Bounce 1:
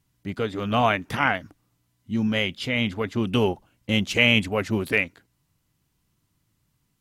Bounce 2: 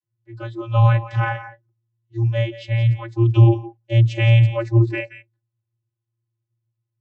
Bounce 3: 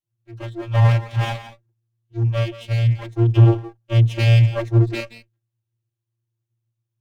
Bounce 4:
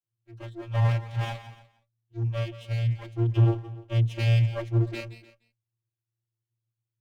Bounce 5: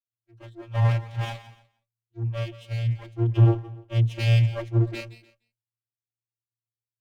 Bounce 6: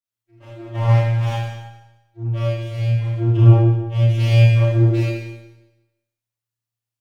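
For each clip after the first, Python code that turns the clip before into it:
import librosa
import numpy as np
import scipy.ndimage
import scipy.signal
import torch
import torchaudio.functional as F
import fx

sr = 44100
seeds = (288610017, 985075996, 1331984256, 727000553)

y1 = x + 10.0 ** (-12.5 / 20.0) * np.pad(x, (int(173 * sr / 1000.0), 0))[:len(x)]
y1 = fx.noise_reduce_blind(y1, sr, reduce_db=18)
y1 = fx.vocoder(y1, sr, bands=32, carrier='square', carrier_hz=115.0)
y1 = F.gain(torch.from_numpy(y1), 8.0).numpy()
y2 = fx.lower_of_two(y1, sr, delay_ms=0.31)
y3 = y2 + 10.0 ** (-20.0 / 20.0) * np.pad(y2, (int(297 * sr / 1000.0), 0))[:len(y2)]
y3 = F.gain(torch.from_numpy(y3), -8.5).numpy()
y4 = fx.band_widen(y3, sr, depth_pct=40)
y4 = F.gain(torch.from_numpy(y4), 1.0).numpy()
y5 = fx.rev_schroeder(y4, sr, rt60_s=1.0, comb_ms=26, drr_db=-7.5)
y5 = F.gain(torch.from_numpy(y5), -2.0).numpy()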